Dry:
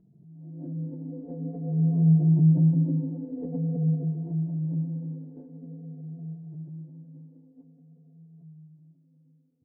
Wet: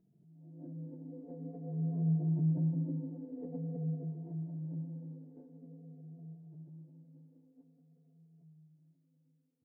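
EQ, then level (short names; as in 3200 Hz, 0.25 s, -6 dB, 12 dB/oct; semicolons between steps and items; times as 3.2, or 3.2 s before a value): low shelf 190 Hz -9.5 dB; -6.0 dB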